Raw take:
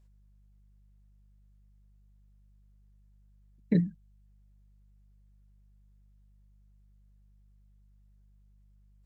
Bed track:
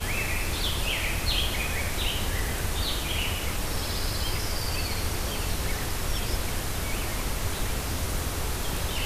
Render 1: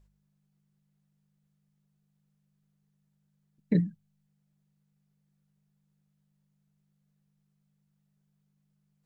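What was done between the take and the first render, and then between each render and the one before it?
hum removal 50 Hz, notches 2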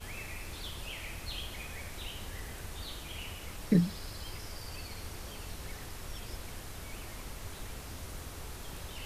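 mix in bed track −14 dB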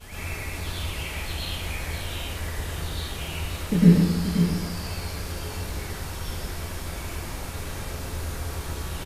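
on a send: single-tap delay 530 ms −8 dB
on the sum: dense smooth reverb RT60 1.1 s, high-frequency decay 0.6×, pre-delay 90 ms, DRR −9 dB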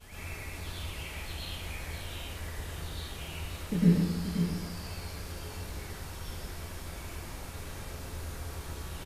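level −8 dB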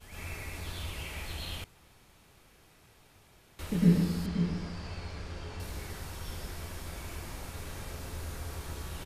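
0:01.64–0:03.59: fill with room tone
0:04.26–0:05.60: high-frequency loss of the air 100 metres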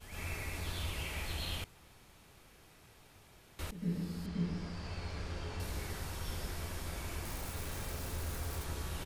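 0:03.71–0:05.22: fade in, from −19.5 dB
0:07.25–0:08.64: spike at every zero crossing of −44 dBFS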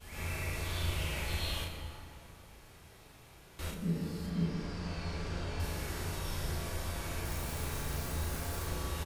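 double-tracking delay 36 ms −3 dB
dense smooth reverb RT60 2.8 s, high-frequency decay 0.55×, DRR 3 dB

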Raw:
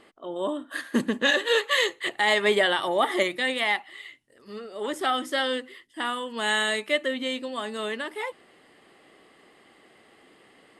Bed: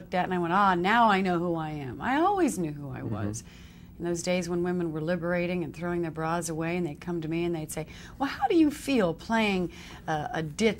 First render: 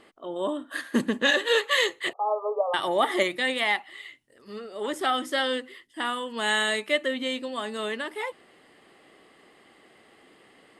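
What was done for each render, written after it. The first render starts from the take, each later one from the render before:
0:02.13–0:02.74: linear-phase brick-wall band-pass 420–1,300 Hz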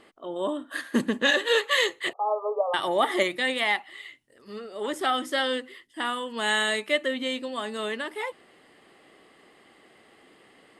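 no processing that can be heard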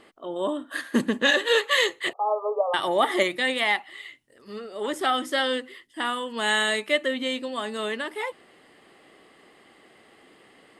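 level +1.5 dB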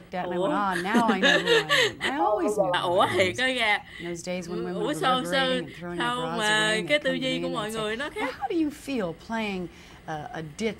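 mix in bed −4 dB

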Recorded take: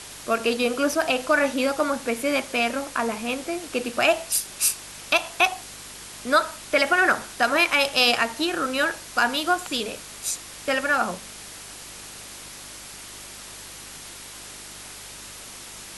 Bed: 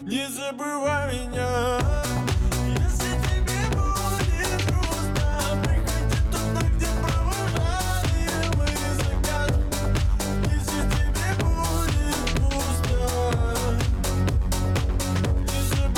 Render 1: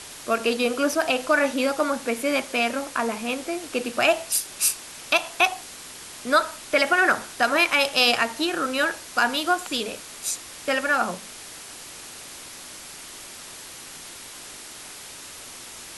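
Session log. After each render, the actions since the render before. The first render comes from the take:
hum removal 50 Hz, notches 4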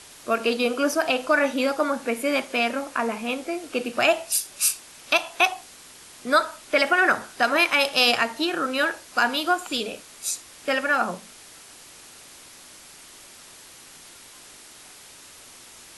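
noise reduction from a noise print 6 dB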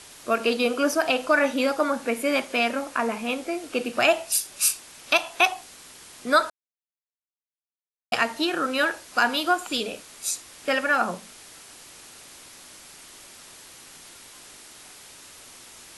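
0:06.50–0:08.12: silence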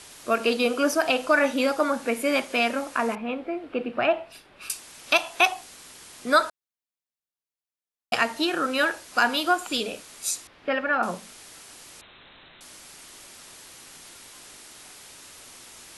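0:03.15–0:04.70: high-frequency loss of the air 470 metres
0:10.47–0:11.03: high-frequency loss of the air 340 metres
0:12.01–0:12.61: voice inversion scrambler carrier 4,000 Hz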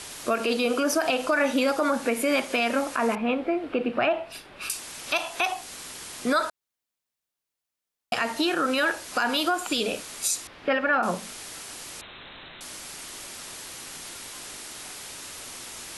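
in parallel at +1 dB: downward compressor, threshold −30 dBFS, peak gain reduction 15.5 dB
on the sum: brickwall limiter −14.5 dBFS, peak gain reduction 9.5 dB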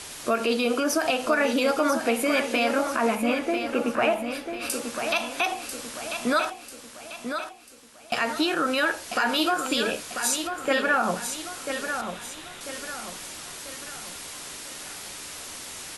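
double-tracking delay 13 ms −11.5 dB
repeating echo 993 ms, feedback 43%, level −7.5 dB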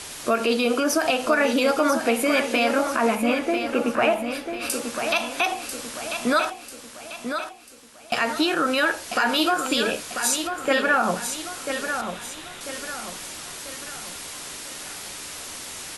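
level +2.5 dB

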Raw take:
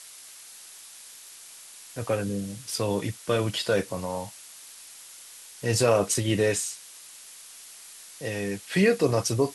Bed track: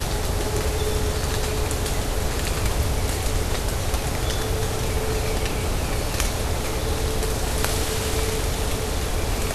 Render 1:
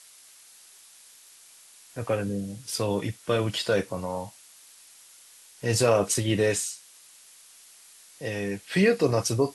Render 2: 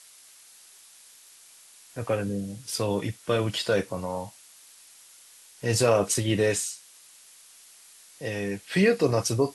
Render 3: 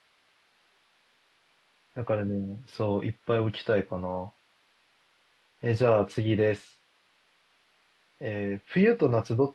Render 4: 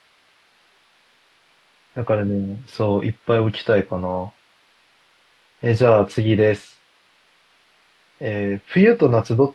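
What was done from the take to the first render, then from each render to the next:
noise reduction from a noise print 6 dB
no processing that can be heard
high-frequency loss of the air 380 metres
level +8.5 dB

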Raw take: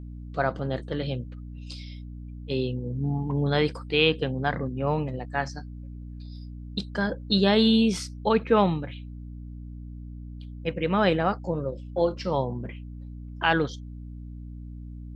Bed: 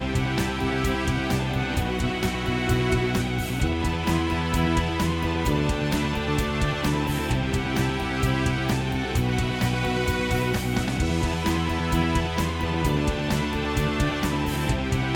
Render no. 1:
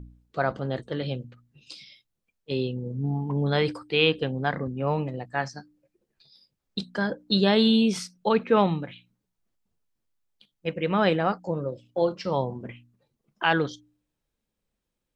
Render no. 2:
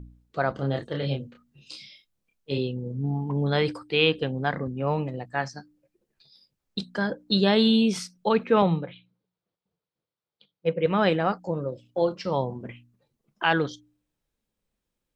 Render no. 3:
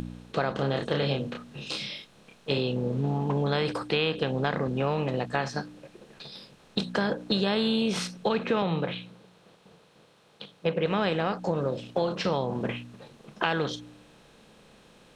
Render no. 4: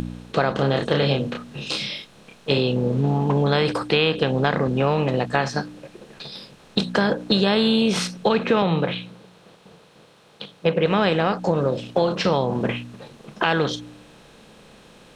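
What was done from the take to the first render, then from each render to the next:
hum removal 60 Hz, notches 5
0:00.55–0:02.58: double-tracking delay 29 ms −3 dB; 0:08.62–0:10.86: loudspeaker in its box 120–4,500 Hz, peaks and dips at 170 Hz +6 dB, 240 Hz −9 dB, 490 Hz +7 dB, 1,800 Hz −5 dB, 2,700 Hz −4 dB
compressor on every frequency bin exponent 0.6; downward compressor 5 to 1, threshold −23 dBFS, peak gain reduction 9.5 dB
level +7 dB; brickwall limiter −3 dBFS, peak gain reduction 2.5 dB

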